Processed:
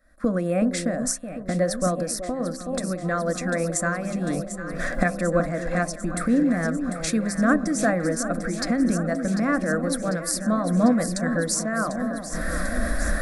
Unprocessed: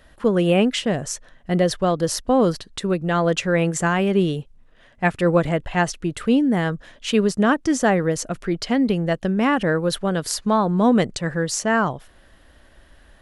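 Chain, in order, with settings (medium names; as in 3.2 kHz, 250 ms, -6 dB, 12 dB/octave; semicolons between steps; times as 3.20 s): recorder AGC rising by 45 dB/s; gate -28 dBFS, range -9 dB; static phaser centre 600 Hz, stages 8; dynamic bell 9.5 kHz, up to +6 dB, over -46 dBFS, Q 2.8; band-stop 6.5 kHz, Q 27; de-hum 65.87 Hz, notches 17; on a send: echo whose repeats swap between lows and highs 373 ms, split 910 Hz, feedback 82%, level -8 dB; 1.88–2.87 s: on the sum: compression, threshold -20 dBFS, peak gain reduction 6.5 dB; random flutter of the level, depth 60%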